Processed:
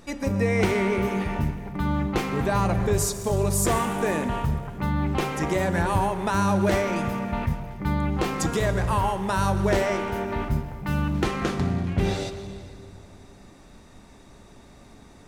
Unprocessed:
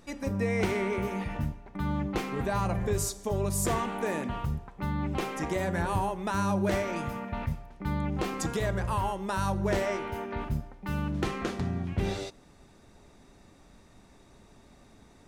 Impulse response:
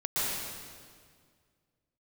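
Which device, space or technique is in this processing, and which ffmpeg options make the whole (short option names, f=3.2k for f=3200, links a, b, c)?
saturated reverb return: -filter_complex "[0:a]asplit=2[a][b];[1:a]atrim=start_sample=2205[c];[b][c]afir=irnorm=-1:irlink=0,asoftclip=type=tanh:threshold=-19.5dB,volume=-16dB[d];[a][d]amix=inputs=2:normalize=0,volume=5dB"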